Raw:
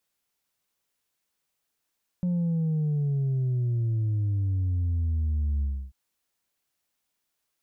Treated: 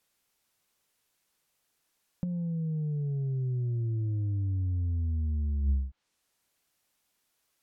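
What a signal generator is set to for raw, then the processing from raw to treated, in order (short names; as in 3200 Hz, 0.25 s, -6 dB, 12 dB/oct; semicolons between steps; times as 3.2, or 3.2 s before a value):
sub drop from 180 Hz, over 3.69 s, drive 2 dB, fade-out 0.30 s, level -23.5 dB
treble ducked by the level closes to 560 Hz, closed at -28.5 dBFS; dynamic EQ 330 Hz, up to +5 dB, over -43 dBFS, Q 0.9; negative-ratio compressor -28 dBFS, ratio -0.5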